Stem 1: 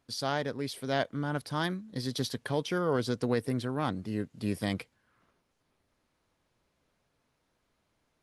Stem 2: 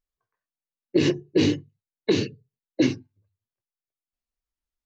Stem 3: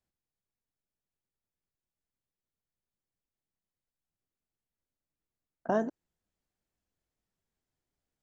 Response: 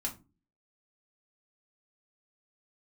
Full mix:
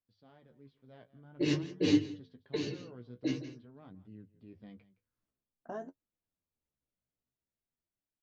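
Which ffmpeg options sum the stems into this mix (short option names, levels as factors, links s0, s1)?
-filter_complex "[0:a]dynaudnorm=f=220:g=9:m=1.88,lowpass=f=3200:w=0.5412,lowpass=f=3200:w=1.3066,equalizer=f=1500:w=0.34:g=-11.5,volume=0.119,asplit=3[s0][s1][s2];[s1]volume=0.126[s3];[1:a]aecho=1:1:6.7:0.67,bandreject=f=64.06:t=h:w=4,bandreject=f=128.12:t=h:w=4,bandreject=f=192.18:t=h:w=4,bandreject=f=256.24:t=h:w=4,bandreject=f=320.3:t=h:w=4,bandreject=f=384.36:t=h:w=4,bandreject=f=448.42:t=h:w=4,bandreject=f=512.48:t=h:w=4,bandreject=f=576.54:t=h:w=4,bandreject=f=640.6:t=h:w=4,bandreject=f=704.66:t=h:w=4,bandreject=f=768.72:t=h:w=4,bandreject=f=832.78:t=h:w=4,bandreject=f=896.84:t=h:w=4,bandreject=f=960.9:t=h:w=4,bandreject=f=1024.96:t=h:w=4,bandreject=f=1089.02:t=h:w=4,bandreject=f=1153.08:t=h:w=4,bandreject=f=1217.14:t=h:w=4,bandreject=f=1281.2:t=h:w=4,bandreject=f=1345.26:t=h:w=4,bandreject=f=1409.32:t=h:w=4,bandreject=f=1473.38:t=h:w=4,bandreject=f=1537.44:t=h:w=4,bandreject=f=1601.5:t=h:w=4,bandreject=f=1665.56:t=h:w=4,bandreject=f=1729.62:t=h:w=4,bandreject=f=1793.68:t=h:w=4,bandreject=f=1857.74:t=h:w=4,bandreject=f=1921.8:t=h:w=4,adelay=450,volume=0.944,asplit=2[s4][s5];[s5]volume=0.075[s6];[2:a]volume=0.355[s7];[s2]apad=whole_len=234277[s8];[s4][s8]sidechaincompress=threshold=0.00178:ratio=3:attack=16:release=595[s9];[s3][s6]amix=inputs=2:normalize=0,aecho=0:1:167:1[s10];[s0][s9][s7][s10]amix=inputs=4:normalize=0,bandreject=f=50:t=h:w=6,bandreject=f=100:t=h:w=6,bandreject=f=150:t=h:w=6,flanger=delay=9.4:depth=7.7:regen=30:speed=0.49:shape=triangular"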